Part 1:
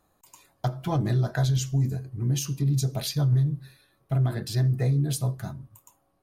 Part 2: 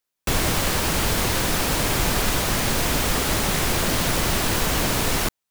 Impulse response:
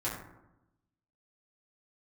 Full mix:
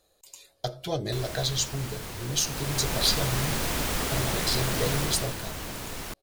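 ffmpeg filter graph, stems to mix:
-filter_complex "[0:a]equalizer=frequency=125:width_type=o:width=1:gain=-8,equalizer=frequency=250:width_type=o:width=1:gain=-10,equalizer=frequency=500:width_type=o:width=1:gain=10,equalizer=frequency=1000:width_type=o:width=1:gain=-11,equalizer=frequency=4000:width_type=o:width=1:gain=10,equalizer=frequency=8000:width_type=o:width=1:gain=4,volume=0dB[link_01];[1:a]adelay=850,volume=-6.5dB,afade=type=in:start_time=2.33:duration=0.79:silence=0.316228,afade=type=out:start_time=4.97:duration=0.41:silence=0.398107[link_02];[link_01][link_02]amix=inputs=2:normalize=0"

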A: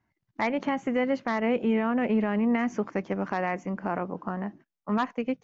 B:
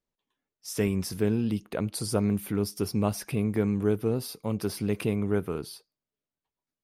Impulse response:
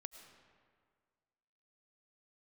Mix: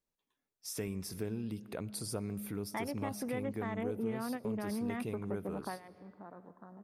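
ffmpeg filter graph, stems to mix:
-filter_complex "[0:a]afwtdn=0.0158,adelay=2350,volume=-2.5dB,asplit=2[link_01][link_02];[link_02]volume=-17.5dB[link_03];[1:a]equalizer=frequency=12000:width=0.53:gain=3,bandreject=frequency=3000:width=15,bandreject=frequency=69.03:width_type=h:width=4,bandreject=frequency=138.06:width_type=h:width=4,bandreject=frequency=207.09:width_type=h:width=4,volume=-5dB,asplit=3[link_04][link_05][link_06];[link_05]volume=-6.5dB[link_07];[link_06]apad=whole_len=343446[link_08];[link_01][link_08]sidechaingate=range=-25dB:threshold=-45dB:ratio=16:detection=peak[link_09];[2:a]atrim=start_sample=2205[link_10];[link_03][link_07]amix=inputs=2:normalize=0[link_11];[link_11][link_10]afir=irnorm=-1:irlink=0[link_12];[link_09][link_04][link_12]amix=inputs=3:normalize=0,acompressor=threshold=-42dB:ratio=2"

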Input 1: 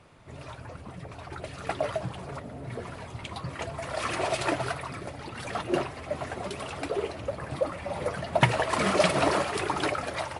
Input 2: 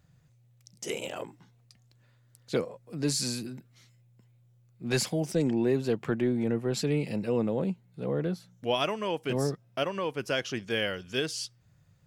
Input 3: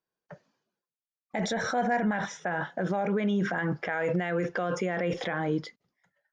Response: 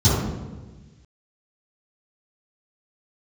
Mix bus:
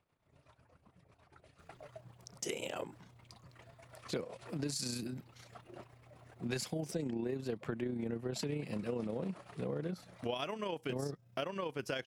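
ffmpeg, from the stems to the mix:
-filter_complex "[0:a]tremolo=f=8.1:d=0.62,volume=-19dB[link_01];[1:a]adelay=1600,volume=2dB[link_02];[link_01][link_02]amix=inputs=2:normalize=0,tremolo=f=30:d=0.462,acompressor=threshold=-36dB:ratio=4"

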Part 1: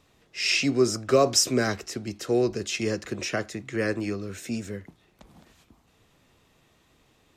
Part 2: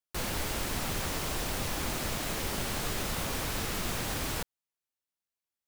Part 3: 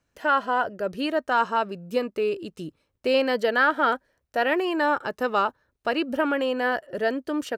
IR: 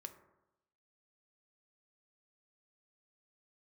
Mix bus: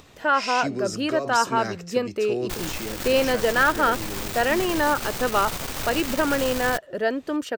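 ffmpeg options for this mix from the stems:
-filter_complex "[0:a]volume=-3.5dB[link_01];[1:a]acrusher=bits=7:dc=4:mix=0:aa=0.000001,aeval=exprs='0.106*(cos(1*acos(clip(val(0)/0.106,-1,1)))-cos(1*PI/2))+0.0168*(cos(8*acos(clip(val(0)/0.106,-1,1)))-cos(8*PI/2))':channel_layout=same,adelay=2350,volume=0.5dB[link_02];[2:a]volume=1dB[link_03];[link_01][link_02]amix=inputs=2:normalize=0,acompressor=mode=upward:threshold=-38dB:ratio=2.5,alimiter=limit=-20.5dB:level=0:latency=1:release=42,volume=0dB[link_04];[link_03][link_04]amix=inputs=2:normalize=0,equalizer=frequency=11000:width=7.1:gain=-11.5"

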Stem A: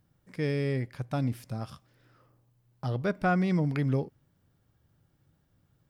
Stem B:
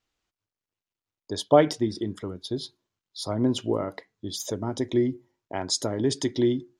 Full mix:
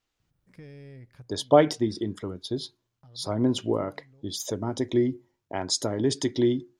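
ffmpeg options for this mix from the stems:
ffmpeg -i stem1.wav -i stem2.wav -filter_complex "[0:a]lowshelf=frequency=84:gain=11,acompressor=threshold=-32dB:ratio=6,asoftclip=type=tanh:threshold=-27.5dB,adelay=200,volume=-9dB[link_01];[1:a]volume=0dB,asplit=2[link_02][link_03];[link_03]apad=whole_len=268818[link_04];[link_01][link_04]sidechaincompress=threshold=-39dB:ratio=4:attack=46:release=1400[link_05];[link_05][link_02]amix=inputs=2:normalize=0" out.wav

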